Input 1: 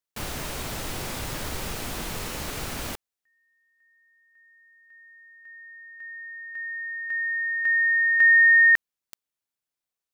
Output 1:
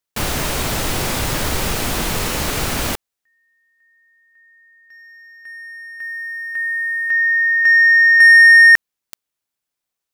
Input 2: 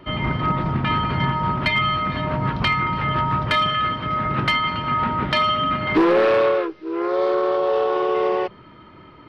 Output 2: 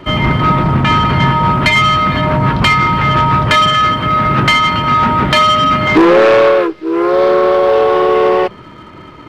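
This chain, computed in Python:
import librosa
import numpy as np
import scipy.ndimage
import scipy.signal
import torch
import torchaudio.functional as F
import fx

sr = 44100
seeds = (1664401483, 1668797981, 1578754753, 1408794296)

y = fx.leveller(x, sr, passes=1)
y = y * librosa.db_to_amplitude(8.0)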